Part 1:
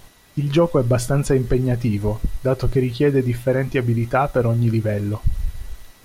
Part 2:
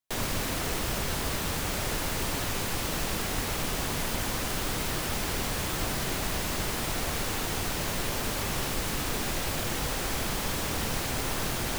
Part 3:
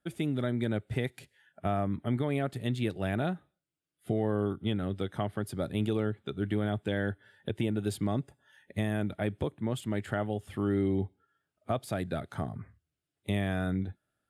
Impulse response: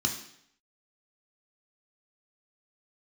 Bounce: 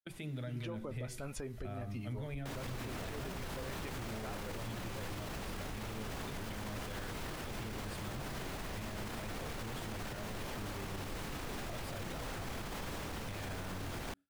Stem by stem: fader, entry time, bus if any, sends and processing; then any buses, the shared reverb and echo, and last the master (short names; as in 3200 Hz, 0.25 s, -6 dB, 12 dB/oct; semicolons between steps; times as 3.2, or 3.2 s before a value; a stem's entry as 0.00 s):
-11.5 dB, 0.10 s, bus A, no send, dry
-3.0 dB, 2.35 s, no bus, no send, high shelf 3900 Hz -9 dB; limiter -25.5 dBFS, peak gain reduction 8 dB
-2.5 dB, 0.00 s, bus A, send -21.5 dB, dry
bus A: 0.0 dB, fifteen-band EQ 160 Hz -10 dB, 400 Hz -3 dB, 2500 Hz +4 dB; compressor 4:1, threshold -39 dBFS, peak gain reduction 13 dB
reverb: on, RT60 0.70 s, pre-delay 3 ms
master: gate with hold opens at -37 dBFS; limiter -33 dBFS, peak gain reduction 10.5 dB